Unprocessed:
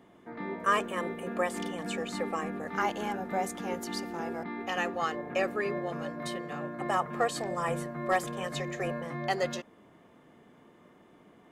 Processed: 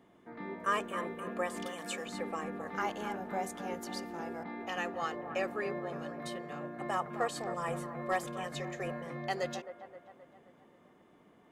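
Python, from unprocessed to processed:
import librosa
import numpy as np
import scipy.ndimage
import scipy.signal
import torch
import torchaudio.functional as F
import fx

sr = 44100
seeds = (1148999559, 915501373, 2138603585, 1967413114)

p1 = fx.tilt_eq(x, sr, slope=2.5, at=(1.66, 2.06))
p2 = p1 + fx.echo_wet_bandpass(p1, sr, ms=263, feedback_pct=52, hz=830.0, wet_db=-10.0, dry=0)
y = F.gain(torch.from_numpy(p2), -5.0).numpy()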